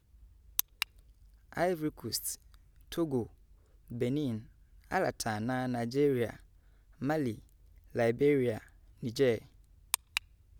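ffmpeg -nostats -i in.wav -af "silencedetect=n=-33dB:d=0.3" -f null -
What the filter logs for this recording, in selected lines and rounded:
silence_start: 0.00
silence_end: 0.59 | silence_duration: 0.59
silence_start: 0.83
silence_end: 1.57 | silence_duration: 0.74
silence_start: 2.34
silence_end: 2.92 | silence_duration: 0.58
silence_start: 3.23
silence_end: 3.93 | silence_duration: 0.70
silence_start: 4.38
silence_end: 4.91 | silence_duration: 0.54
silence_start: 6.30
silence_end: 7.02 | silence_duration: 0.72
silence_start: 7.31
silence_end: 7.96 | silence_duration: 0.64
silence_start: 8.58
silence_end: 9.03 | silence_duration: 0.46
silence_start: 9.38
silence_end: 9.94 | silence_duration: 0.56
silence_start: 10.17
silence_end: 10.59 | silence_duration: 0.42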